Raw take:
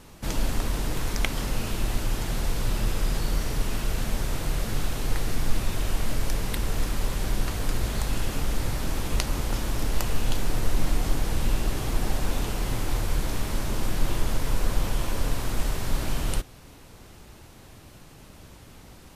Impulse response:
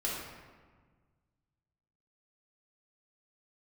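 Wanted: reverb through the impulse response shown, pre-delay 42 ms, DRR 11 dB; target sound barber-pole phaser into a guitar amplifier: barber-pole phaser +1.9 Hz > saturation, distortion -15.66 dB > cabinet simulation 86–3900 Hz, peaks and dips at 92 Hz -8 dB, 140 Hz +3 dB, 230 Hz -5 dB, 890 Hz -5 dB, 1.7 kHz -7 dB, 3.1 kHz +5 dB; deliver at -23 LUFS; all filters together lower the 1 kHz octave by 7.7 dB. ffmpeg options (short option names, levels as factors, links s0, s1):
-filter_complex "[0:a]equalizer=f=1000:t=o:g=-7,asplit=2[s0][s1];[1:a]atrim=start_sample=2205,adelay=42[s2];[s1][s2]afir=irnorm=-1:irlink=0,volume=0.15[s3];[s0][s3]amix=inputs=2:normalize=0,asplit=2[s4][s5];[s5]afreqshift=1.9[s6];[s4][s6]amix=inputs=2:normalize=1,asoftclip=threshold=0.112,highpass=86,equalizer=f=92:t=q:w=4:g=-8,equalizer=f=140:t=q:w=4:g=3,equalizer=f=230:t=q:w=4:g=-5,equalizer=f=890:t=q:w=4:g=-5,equalizer=f=1700:t=q:w=4:g=-7,equalizer=f=3100:t=q:w=4:g=5,lowpass=f=3900:w=0.5412,lowpass=f=3900:w=1.3066,volume=6.31"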